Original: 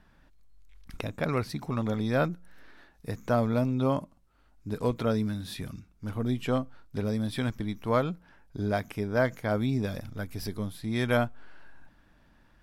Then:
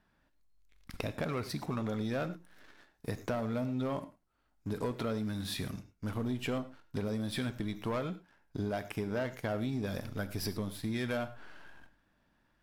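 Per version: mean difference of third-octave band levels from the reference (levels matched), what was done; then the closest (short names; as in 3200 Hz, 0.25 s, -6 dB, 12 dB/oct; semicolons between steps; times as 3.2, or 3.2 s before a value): 5.0 dB: low shelf 100 Hz -7.5 dB; sample leveller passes 2; compressor, threshold -27 dBFS, peak gain reduction 9.5 dB; non-linear reverb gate 0.13 s flat, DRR 11.5 dB; gain -5 dB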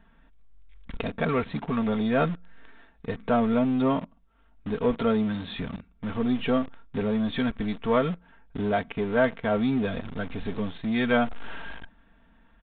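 7.0 dB: dynamic EQ 200 Hz, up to -4 dB, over -44 dBFS, Q 6.1; comb 4.4 ms, depth 62%; in parallel at -10 dB: companded quantiser 2-bit; on the sum: downsampling 8000 Hz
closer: first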